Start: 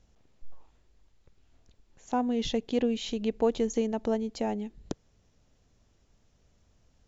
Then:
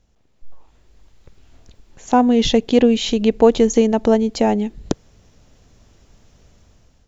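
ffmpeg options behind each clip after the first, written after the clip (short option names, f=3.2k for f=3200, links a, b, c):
-af "dynaudnorm=f=320:g=5:m=13dB,volume=2dB"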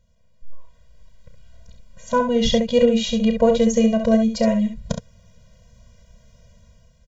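-af "aecho=1:1:32.07|67.06:0.316|0.447,afftfilt=real='re*eq(mod(floor(b*sr/1024/230),2),0)':imag='im*eq(mod(floor(b*sr/1024/230),2),0)':win_size=1024:overlap=0.75"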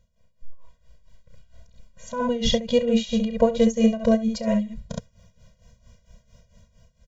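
-af "tremolo=f=4.4:d=0.79"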